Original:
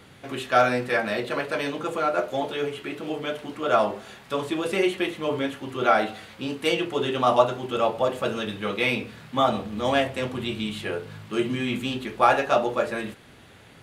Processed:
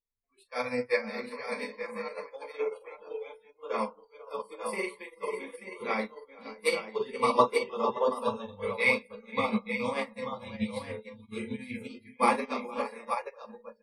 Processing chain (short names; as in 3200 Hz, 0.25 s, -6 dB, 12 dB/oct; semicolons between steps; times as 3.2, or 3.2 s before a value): tapped delay 41/169/211/471/572/884 ms -8/-20/-19.5/-10/-7.5/-3.5 dB; added noise brown -36 dBFS; high shelf 4700 Hz +9 dB; notches 60/120/180/240 Hz; flange 0.23 Hz, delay 6.9 ms, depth 3 ms, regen -65%; ripple EQ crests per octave 0.92, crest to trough 17 dB; spectral noise reduction 29 dB; upward expander 2.5:1, over -37 dBFS